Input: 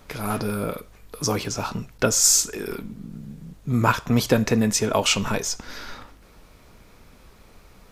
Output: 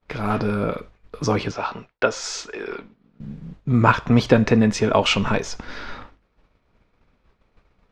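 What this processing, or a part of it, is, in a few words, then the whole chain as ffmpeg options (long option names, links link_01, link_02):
hearing-loss simulation: -filter_complex "[0:a]asettb=1/sr,asplit=3[link_01][link_02][link_03];[link_01]atrim=end=1.514[link_04];[link_02]atrim=start=1.51:end=3.2,asetpts=PTS-STARTPTS,afade=type=in:duration=0.004:curve=qsin,afade=type=out:start_time=1.686:duration=0.004:curve=qsin,acrossover=split=370 5700:gain=0.178 1 0.178[link_05][link_06][link_07];[link_05][link_06][link_07]amix=inputs=3:normalize=0[link_08];[link_03]atrim=start=3.196[link_09];[link_04][link_08]acrossfade=duration=0.004:curve1=hsin:curve2=qsin[link_10];[link_10][link_09]acrossfade=duration=0.004:curve1=qsin:curve2=hsin,lowpass=3300,agate=range=-33dB:threshold=-38dB:ratio=3:detection=peak,volume=4dB"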